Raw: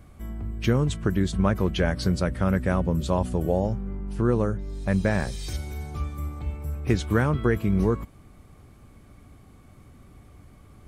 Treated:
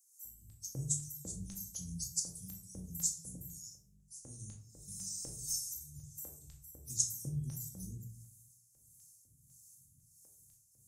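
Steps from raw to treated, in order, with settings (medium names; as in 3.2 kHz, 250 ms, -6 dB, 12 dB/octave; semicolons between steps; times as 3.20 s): Chebyshev band-stop 140–6500 Hz, order 4; 3.35–4.18 s: resonant low shelf 520 Hz -10 dB, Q 1.5; LFO high-pass square 2 Hz 450–5000 Hz; harmonic tremolo 1.5 Hz, depth 70%, crossover 560 Hz; simulated room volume 560 m³, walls furnished, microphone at 2.2 m; trim +8 dB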